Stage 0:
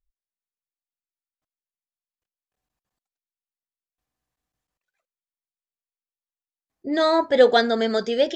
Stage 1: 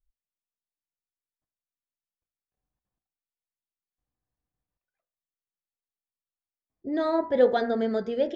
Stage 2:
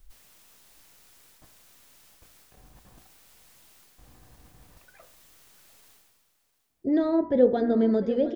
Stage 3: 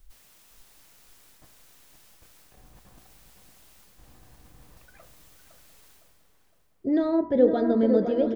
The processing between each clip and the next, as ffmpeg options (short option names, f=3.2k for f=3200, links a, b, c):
-af "lowpass=f=1k:p=1,lowshelf=f=200:g=6.5,bandreject=f=57.74:t=h:w=4,bandreject=f=115.48:t=h:w=4,bandreject=f=173.22:t=h:w=4,bandreject=f=230.96:t=h:w=4,bandreject=f=288.7:t=h:w=4,bandreject=f=346.44:t=h:w=4,bandreject=f=404.18:t=h:w=4,bandreject=f=461.92:t=h:w=4,bandreject=f=519.66:t=h:w=4,bandreject=f=577.4:t=h:w=4,bandreject=f=635.14:t=h:w=4,bandreject=f=692.88:t=h:w=4,bandreject=f=750.62:t=h:w=4,bandreject=f=808.36:t=h:w=4,bandreject=f=866.1:t=h:w=4,bandreject=f=923.84:t=h:w=4,bandreject=f=981.58:t=h:w=4,bandreject=f=1.03932k:t=h:w=4,bandreject=f=1.09706k:t=h:w=4,bandreject=f=1.1548k:t=h:w=4,bandreject=f=1.21254k:t=h:w=4,bandreject=f=1.27028k:t=h:w=4,bandreject=f=1.32802k:t=h:w=4,bandreject=f=1.38576k:t=h:w=4,bandreject=f=1.4435k:t=h:w=4,bandreject=f=1.50124k:t=h:w=4,bandreject=f=1.55898k:t=h:w=4,bandreject=f=1.61672k:t=h:w=4,bandreject=f=1.67446k:t=h:w=4,bandreject=f=1.7322k:t=h:w=4,bandreject=f=1.78994k:t=h:w=4,bandreject=f=1.84768k:t=h:w=4,bandreject=f=1.90542k:t=h:w=4,bandreject=f=1.96316k:t=h:w=4,bandreject=f=2.0209k:t=h:w=4,bandreject=f=2.07864k:t=h:w=4,bandreject=f=2.13638k:t=h:w=4,volume=-4.5dB"
-filter_complex "[0:a]areverse,acompressor=mode=upward:threshold=-38dB:ratio=2.5,areverse,aecho=1:1:700:0.141,acrossover=split=440[a][b];[b]acompressor=threshold=-43dB:ratio=4[c];[a][c]amix=inputs=2:normalize=0,volume=7dB"
-filter_complex "[0:a]asplit=2[a][b];[b]adelay=510,lowpass=f=1.5k:p=1,volume=-6dB,asplit=2[c][d];[d]adelay=510,lowpass=f=1.5k:p=1,volume=0.51,asplit=2[e][f];[f]adelay=510,lowpass=f=1.5k:p=1,volume=0.51,asplit=2[g][h];[h]adelay=510,lowpass=f=1.5k:p=1,volume=0.51,asplit=2[i][j];[j]adelay=510,lowpass=f=1.5k:p=1,volume=0.51,asplit=2[k][l];[l]adelay=510,lowpass=f=1.5k:p=1,volume=0.51[m];[a][c][e][g][i][k][m]amix=inputs=7:normalize=0"